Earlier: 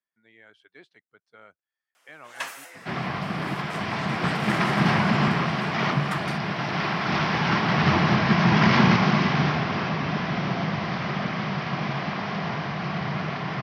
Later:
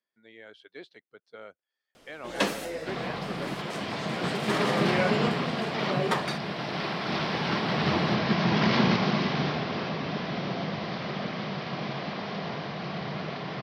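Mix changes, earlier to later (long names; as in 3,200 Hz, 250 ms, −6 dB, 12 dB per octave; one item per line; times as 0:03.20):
first sound: remove high-pass filter 880 Hz 12 dB per octave
second sound −9.0 dB
master: add octave-band graphic EQ 250/500/4,000 Hz +4/+9/+9 dB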